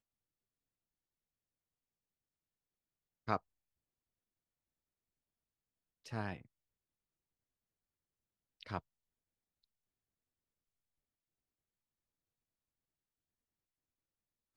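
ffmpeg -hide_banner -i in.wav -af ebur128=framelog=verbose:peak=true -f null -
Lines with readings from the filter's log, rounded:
Integrated loudness:
  I:         -43.1 LUFS
  Threshold: -53.9 LUFS
Loudness range:
  LRA:         6.0 LU
  Threshold: -70.6 LUFS
  LRA low:   -54.5 LUFS
  LRA high:  -48.5 LUFS
True peak:
  Peak:      -16.8 dBFS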